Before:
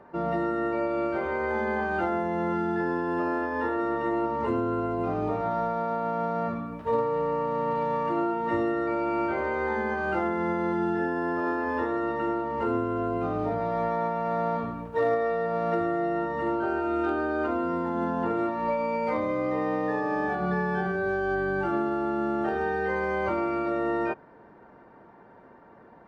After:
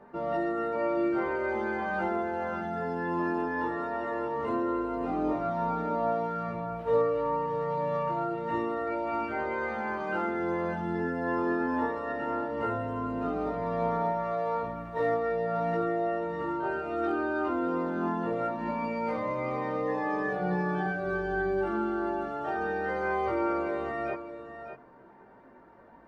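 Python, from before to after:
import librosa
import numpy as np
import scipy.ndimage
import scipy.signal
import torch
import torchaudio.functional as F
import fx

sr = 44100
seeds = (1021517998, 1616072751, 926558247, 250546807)

y = fx.rider(x, sr, range_db=10, speed_s=2.0)
y = fx.chorus_voices(y, sr, voices=4, hz=0.11, base_ms=20, depth_ms=4.6, mix_pct=50)
y = y + 10.0 ** (-10.0 / 20.0) * np.pad(y, (int(601 * sr / 1000.0), 0))[:len(y)]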